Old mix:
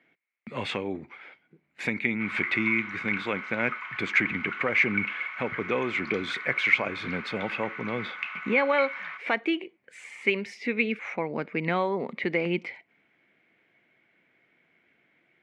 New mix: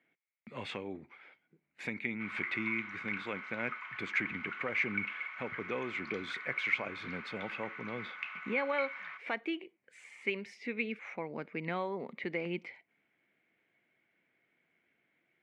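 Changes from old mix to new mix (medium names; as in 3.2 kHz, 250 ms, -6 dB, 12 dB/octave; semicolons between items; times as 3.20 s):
speech -9.5 dB; background -7.0 dB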